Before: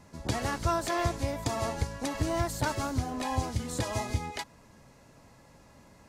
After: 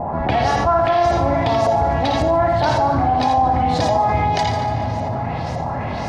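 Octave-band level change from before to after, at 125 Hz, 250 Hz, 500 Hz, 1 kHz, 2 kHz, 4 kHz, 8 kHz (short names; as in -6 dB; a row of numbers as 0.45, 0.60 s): +11.5, +11.5, +17.0, +19.0, +11.0, +10.5, 0.0 dB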